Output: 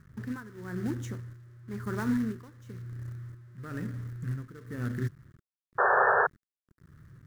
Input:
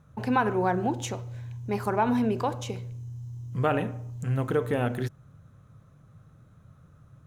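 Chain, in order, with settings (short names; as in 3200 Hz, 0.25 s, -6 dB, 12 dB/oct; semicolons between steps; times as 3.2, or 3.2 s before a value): tremolo 0.99 Hz, depth 87%; companded quantiser 4-bit; EQ curve 210 Hz 0 dB, 350 Hz -4 dB, 790 Hz -23 dB, 1200 Hz -6 dB, 1800 Hz -2 dB, 2500 Hz -17 dB, 5700 Hz -13 dB; painted sound noise, 5.78–6.27, 370–1800 Hz -23 dBFS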